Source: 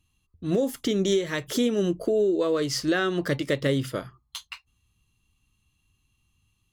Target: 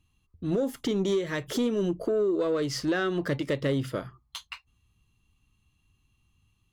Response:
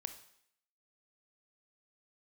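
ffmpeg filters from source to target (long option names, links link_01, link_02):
-filter_complex "[0:a]highshelf=frequency=3400:gain=-7,asplit=2[link_01][link_02];[link_02]acompressor=threshold=-32dB:ratio=6,volume=-2.5dB[link_03];[link_01][link_03]amix=inputs=2:normalize=0,asoftclip=type=tanh:threshold=-15dB,volume=-3dB"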